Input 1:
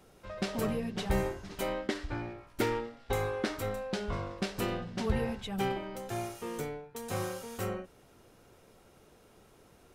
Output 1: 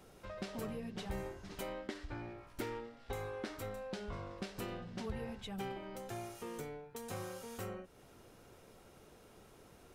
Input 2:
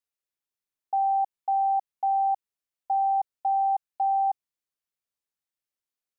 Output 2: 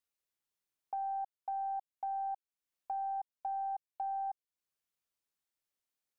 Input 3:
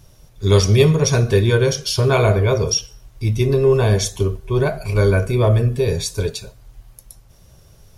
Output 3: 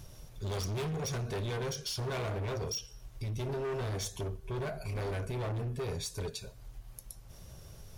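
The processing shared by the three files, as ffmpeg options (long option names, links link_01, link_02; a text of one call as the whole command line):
ffmpeg -i in.wav -af "aeval=exprs='0.891*(cos(1*acos(clip(val(0)/0.891,-1,1)))-cos(1*PI/2))+0.0178*(cos(6*acos(clip(val(0)/0.891,-1,1)))-cos(6*PI/2))':channel_layout=same,volume=19dB,asoftclip=hard,volume=-19dB,acompressor=threshold=-47dB:ratio=2" out.wav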